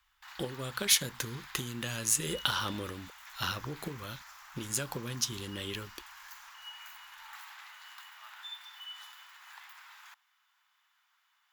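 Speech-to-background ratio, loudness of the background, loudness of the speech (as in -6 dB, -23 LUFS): 15.0 dB, -48.0 LUFS, -33.0 LUFS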